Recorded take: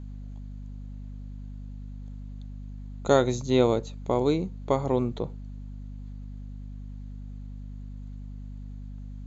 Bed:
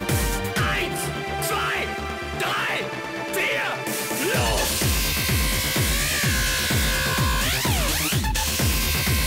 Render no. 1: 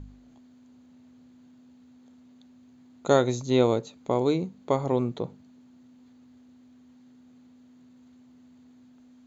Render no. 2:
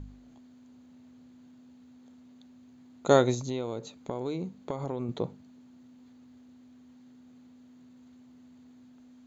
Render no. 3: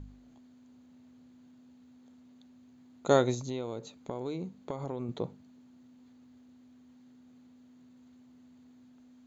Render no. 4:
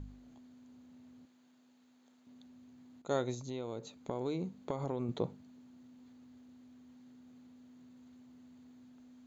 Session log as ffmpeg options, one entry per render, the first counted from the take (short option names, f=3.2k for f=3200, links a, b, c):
-af "bandreject=f=50:t=h:w=4,bandreject=f=100:t=h:w=4,bandreject=f=150:t=h:w=4,bandreject=f=200:t=h:w=4"
-filter_complex "[0:a]asettb=1/sr,asplit=3[a][b][c];[a]atrim=end=3.344[d];[b]atrim=start=3.34:end=5.09,asetpts=PTS-STARTPTS,afade=t=in:d=0.004:c=qsin,afade=t=out:st=1.746:d=0.004:c=qsin,acompressor=threshold=-29dB:ratio=6:attack=3.2:release=140:knee=1:detection=peak[e];[c]atrim=start=5.086[f];[d][e]acrossfade=d=0.004:c1=hsin:c2=qsin[g];[g][f]acrossfade=d=0.004:c1=qsin:c2=hsin"
-af "volume=-3dB"
-filter_complex "[0:a]asettb=1/sr,asplit=3[a][b][c];[a]atrim=end=1.254[d];[b]atrim=start=1.25:end=2.27,asetpts=PTS-STARTPTS,afade=t=in:d=0.004:c=qsin,afade=t=out:st=1.016:d=0.004:c=qsin,highpass=f=670:p=1[e];[c]atrim=start=2.266[f];[d][e]acrossfade=d=0.004:c1=hsin:c2=qsin[g];[g][f]acrossfade=d=0.004:c1=qsin:c2=hsin,asplit=2[h][i];[h]atrim=end=3.02,asetpts=PTS-STARTPTS,afade=t=out:st=3.016:d=0.004:c=hsin:silence=0.237137[j];[i]atrim=start=3.02,asetpts=PTS-STARTPTS,afade=t=in:d=1.2:silence=0.237137[k];[j][k]concat=n=2:v=0:a=1"